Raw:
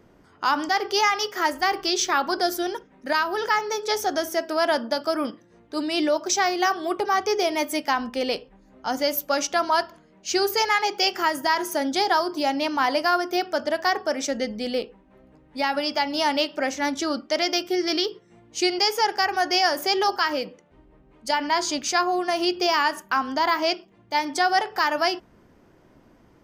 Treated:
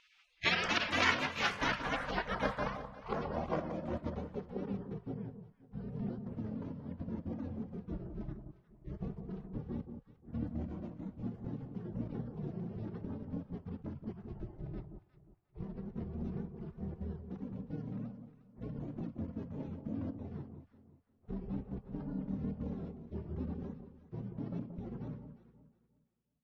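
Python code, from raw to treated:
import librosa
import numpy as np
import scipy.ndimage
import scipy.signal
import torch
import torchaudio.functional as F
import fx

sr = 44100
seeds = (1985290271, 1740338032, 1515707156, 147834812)

y = fx.spec_gate(x, sr, threshold_db=-30, keep='weak')
y = fx.echo_alternate(y, sr, ms=178, hz=1100.0, feedback_pct=51, wet_db=-7.5)
y = fx.filter_sweep_lowpass(y, sr, from_hz=2200.0, to_hz=240.0, start_s=1.27, end_s=5.21, q=1.2)
y = F.gain(torch.from_numpy(y), 16.0).numpy()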